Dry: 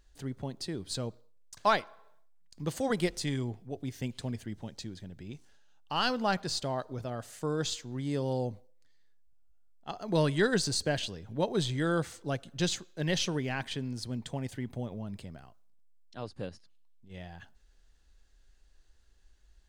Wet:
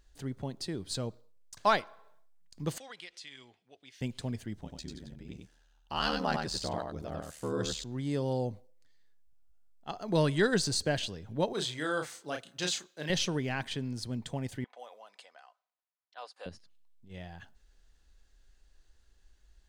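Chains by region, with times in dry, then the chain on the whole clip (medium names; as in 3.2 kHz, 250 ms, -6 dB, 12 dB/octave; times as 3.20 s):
2.78–4.01 s: band-pass filter 2.9 kHz, Q 1.3 + compression 2.5:1, threshold -45 dBFS
4.60–7.84 s: ring modulator 38 Hz + delay 94 ms -4.5 dB
11.53–13.10 s: high-pass 640 Hz 6 dB/octave + doubling 33 ms -5 dB
14.64–16.46 s: high-pass 650 Hz 24 dB/octave + comb 4 ms, depth 35% + level-controlled noise filter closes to 2 kHz, open at -46.5 dBFS
whole clip: none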